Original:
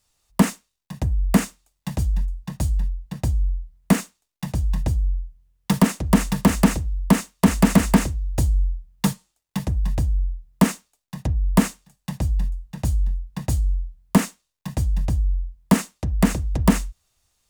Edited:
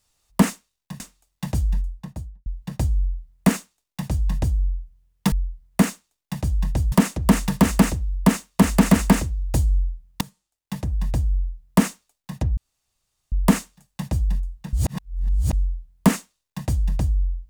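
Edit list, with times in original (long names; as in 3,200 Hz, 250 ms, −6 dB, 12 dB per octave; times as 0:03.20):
0:01.00–0:01.44: remove
0:02.21–0:02.90: fade out and dull
0:03.43–0:05.03: duplicate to 0:05.76
0:09.05–0:10.31: fade in equal-power, from −22.5 dB
0:11.41: splice in room tone 0.75 s
0:12.82–0:13.62: reverse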